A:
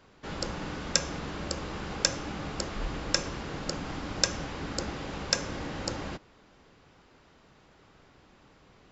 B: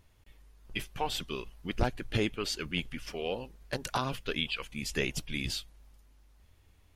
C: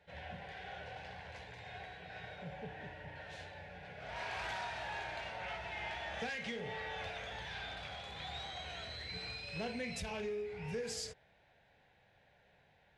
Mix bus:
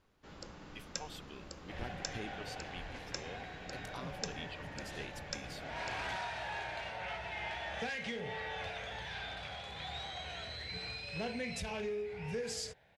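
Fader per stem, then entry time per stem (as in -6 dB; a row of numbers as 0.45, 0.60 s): -15.5, -15.0, +1.5 dB; 0.00, 0.00, 1.60 s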